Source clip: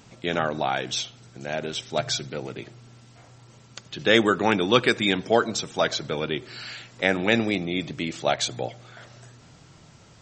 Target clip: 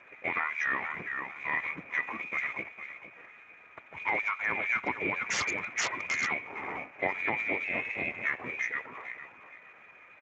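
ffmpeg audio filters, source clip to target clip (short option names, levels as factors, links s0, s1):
-filter_complex "[0:a]aeval=exprs='if(lt(val(0),0),0.708*val(0),val(0))':c=same,highpass=150,tremolo=f=130:d=0.4,lowpass=f=2200:t=q:w=0.5098,lowpass=f=2200:t=q:w=0.6013,lowpass=f=2200:t=q:w=0.9,lowpass=f=2200:t=q:w=2.563,afreqshift=-2600,tiltshelf=f=710:g=3.5,aecho=1:1:457|914|1371:0.266|0.0585|0.0129,asettb=1/sr,asplit=3[s0][s1][s2];[s0]atrim=end=5.264[s3];[s1]atrim=start=5.26:end=6.28,asetpts=PTS-STARTPTS,afade=t=in:d=0.004:c=qsin,afade=t=out:st=1.016:d=0.004:c=qsin,aeval=exprs='0.0355*(abs(mod(val(0)/0.0355+3,4)-2)-1)':c=same[s4];[s2]atrim=start=6.276[s5];[s3][s4]acrossfade=d=0.004:c1=hsin:c2=qsin[s6];[s6][s5]acrossfade=d=0.004:c1=qsin:c2=hsin,asettb=1/sr,asplit=3[s7][s8][s9];[s7]atrim=end=7.644[s10];[s8]atrim=start=7.64:end=8.44,asetpts=PTS-STARTPTS,afade=t=in:d=0.004:c=qsin,afade=t=out:st=0.796:d=0.004:c=qsin,aeval=exprs='val(0)*sin(2*PI*180*n/s)':c=same[s11];[s9]atrim=start=8.436[s12];[s10][s11]acrossfade=d=0.004:c1=hsin:c2=qsin[s13];[s13][s12]acrossfade=d=0.004:c1=qsin:c2=hsin,acompressor=threshold=0.0251:ratio=12,volume=2.37" -ar 16000 -c:a libspeex -b:a 13k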